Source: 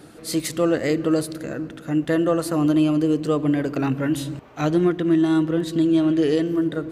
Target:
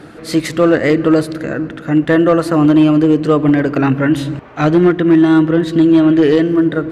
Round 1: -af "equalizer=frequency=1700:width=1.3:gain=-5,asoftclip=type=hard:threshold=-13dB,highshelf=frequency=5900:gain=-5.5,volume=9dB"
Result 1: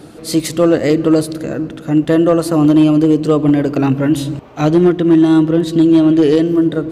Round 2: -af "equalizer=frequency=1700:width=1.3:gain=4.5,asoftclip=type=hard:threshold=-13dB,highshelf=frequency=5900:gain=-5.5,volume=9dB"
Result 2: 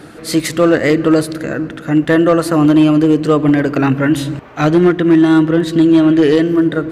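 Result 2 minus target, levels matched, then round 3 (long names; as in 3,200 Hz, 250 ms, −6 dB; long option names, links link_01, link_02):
8,000 Hz band +5.5 dB
-af "equalizer=frequency=1700:width=1.3:gain=4.5,asoftclip=type=hard:threshold=-13dB,highshelf=frequency=5900:gain=-14.5,volume=9dB"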